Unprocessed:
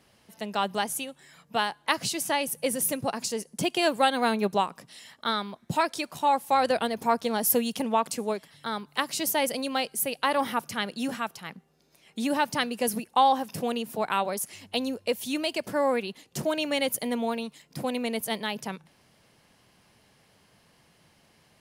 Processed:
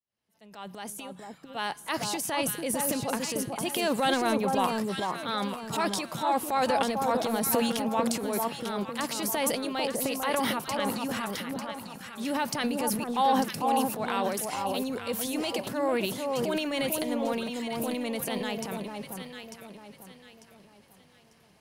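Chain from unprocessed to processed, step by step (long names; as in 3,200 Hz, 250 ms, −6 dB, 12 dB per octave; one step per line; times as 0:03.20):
fade in at the beginning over 2.09 s
transient designer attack −5 dB, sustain +10 dB
delay that swaps between a low-pass and a high-pass 448 ms, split 1,200 Hz, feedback 57%, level −2.5 dB
level −3 dB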